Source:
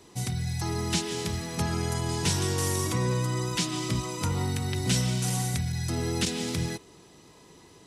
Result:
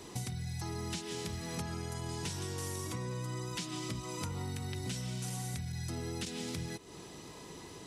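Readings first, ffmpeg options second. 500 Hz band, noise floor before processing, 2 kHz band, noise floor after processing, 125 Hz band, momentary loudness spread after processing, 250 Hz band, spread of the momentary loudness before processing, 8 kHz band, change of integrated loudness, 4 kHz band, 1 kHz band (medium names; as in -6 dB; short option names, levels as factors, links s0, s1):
-10.0 dB, -54 dBFS, -10.0 dB, -50 dBFS, -10.5 dB, 7 LU, -10.0 dB, 5 LU, -10.5 dB, -11.0 dB, -10.5 dB, -10.0 dB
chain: -af "acompressor=threshold=0.00891:ratio=8,volume=1.68"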